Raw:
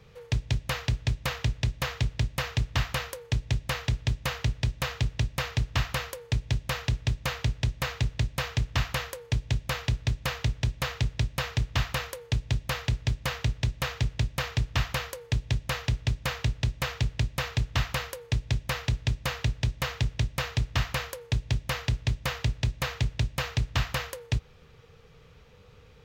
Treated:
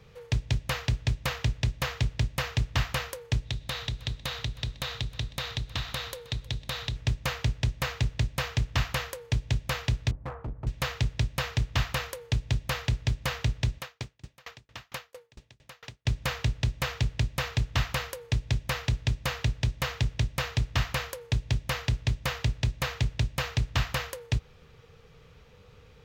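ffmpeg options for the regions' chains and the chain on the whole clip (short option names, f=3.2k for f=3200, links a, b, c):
-filter_complex "[0:a]asettb=1/sr,asplit=3[a][b][c];[a]atrim=end=3.454[d];[b]atrim=start=3.45:end=6.96,asetpts=PTS-STARTPTS,afade=t=in:d=0.004:c=qsin,afade=t=out:st=3.506:d=0.004:c=qsin,equalizer=f=3.8k:t=o:w=0.38:g=11,acompressor=threshold=-32dB:ratio=2:attack=3.2:release=140:knee=1:detection=peak,aecho=1:1:314:0.106,atrim=end_sample=154791[e];[c]atrim=start=6.956[f];[d][e]acrossfade=d=0.004:c1=hsin:c2=qsin[g];[g][f]acrossfade=d=0.004:c1=qsin:c2=hsin,asettb=1/sr,asplit=3[h][i][j];[h]atrim=end=10.114[k];[i]atrim=start=10.11:end=10.67,asetpts=PTS-STARTPTS,afade=t=in:d=0.004:c=qsin,afade=t=out:st=0.556:d=0.004:c=qsin,lowpass=f=1.2k:w=0.5412,lowpass=f=1.2k:w=1.3066,asoftclip=type=hard:threshold=-31.5dB[l];[j]atrim=start=10.666[m];[k][l]acrossfade=d=0.004:c1=hsin:c2=qsin[n];[n][m]acrossfade=d=0.004:c1=qsin:c2=hsin,asettb=1/sr,asplit=3[o][p][q];[o]atrim=end=13.784[r];[p]atrim=start=13.78:end=16.07,asetpts=PTS-STARTPTS,afade=t=in:d=0.004:c=qsin,afade=t=out:st=2.286:d=0.004:c=qsin,highpass=f=290:p=1,aeval=exprs='val(0)*pow(10,-35*if(lt(mod(4.4*n/s,1),2*abs(4.4)/1000),1-mod(4.4*n/s,1)/(2*abs(4.4)/1000),(mod(4.4*n/s,1)-2*abs(4.4)/1000)/(1-2*abs(4.4)/1000))/20)':c=same[s];[q]atrim=start=16.066[t];[r][s]acrossfade=d=0.004:c1=hsin:c2=qsin[u];[u][t]acrossfade=d=0.004:c1=qsin:c2=hsin"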